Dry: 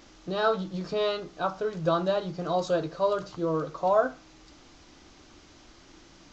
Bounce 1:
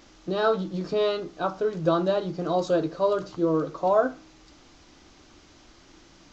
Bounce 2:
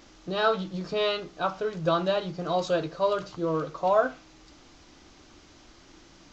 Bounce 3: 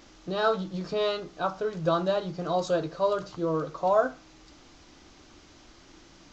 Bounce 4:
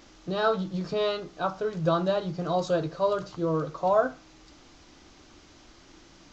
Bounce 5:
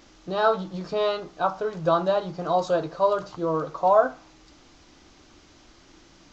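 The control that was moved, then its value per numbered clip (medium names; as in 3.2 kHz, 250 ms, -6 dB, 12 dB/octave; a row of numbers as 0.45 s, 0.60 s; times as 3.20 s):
dynamic bell, frequency: 310 Hz, 2.6 kHz, 8.2 kHz, 110 Hz, 870 Hz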